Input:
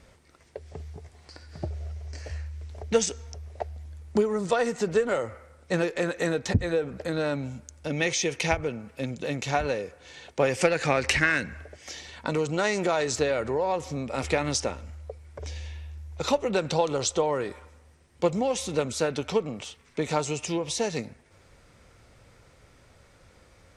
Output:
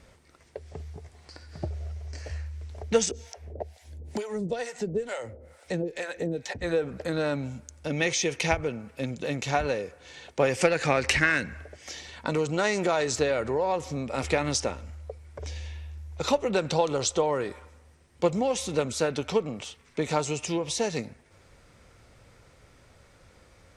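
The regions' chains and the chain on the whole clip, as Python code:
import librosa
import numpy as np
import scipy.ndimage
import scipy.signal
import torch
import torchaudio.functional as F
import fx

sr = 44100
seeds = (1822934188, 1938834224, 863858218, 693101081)

y = fx.chain(x, sr, fx.harmonic_tremolo(hz=2.2, depth_pct=100, crossover_hz=600.0),
    fx.peak_eq(hz=1200.0, db=-11.0, octaves=0.54),
    fx.band_squash(depth_pct=70), at=(3.11, 6.62))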